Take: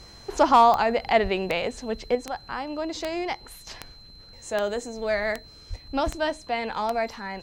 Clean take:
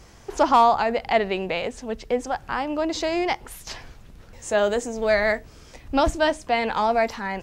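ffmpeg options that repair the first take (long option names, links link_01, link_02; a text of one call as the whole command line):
ffmpeg -i in.wav -filter_complex "[0:a]adeclick=threshold=4,bandreject=frequency=4100:width=30,asplit=3[link_01][link_02][link_03];[link_01]afade=type=out:start_time=1.22:duration=0.02[link_04];[link_02]highpass=frequency=140:width=0.5412,highpass=frequency=140:width=1.3066,afade=type=in:start_time=1.22:duration=0.02,afade=type=out:start_time=1.34:duration=0.02[link_05];[link_03]afade=type=in:start_time=1.34:duration=0.02[link_06];[link_04][link_05][link_06]amix=inputs=3:normalize=0,asplit=3[link_07][link_08][link_09];[link_07]afade=type=out:start_time=5.69:duration=0.02[link_10];[link_08]highpass=frequency=140:width=0.5412,highpass=frequency=140:width=1.3066,afade=type=in:start_time=5.69:duration=0.02,afade=type=out:start_time=5.81:duration=0.02[link_11];[link_09]afade=type=in:start_time=5.81:duration=0.02[link_12];[link_10][link_11][link_12]amix=inputs=3:normalize=0,asetnsamples=nb_out_samples=441:pad=0,asendcmd='2.15 volume volume 5.5dB',volume=0dB" out.wav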